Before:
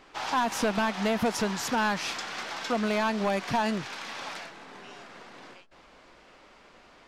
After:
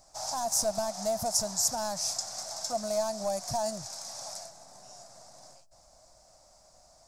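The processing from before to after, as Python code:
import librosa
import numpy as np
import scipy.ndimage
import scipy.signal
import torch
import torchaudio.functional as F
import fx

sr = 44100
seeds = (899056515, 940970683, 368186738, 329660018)

y = fx.curve_eq(x, sr, hz=(120.0, 230.0, 440.0, 640.0, 970.0, 1700.0, 3000.0, 5200.0, 7800.0, 12000.0), db=(0, -14, -20, 3, -11, -19, -23, 7, 12, 8))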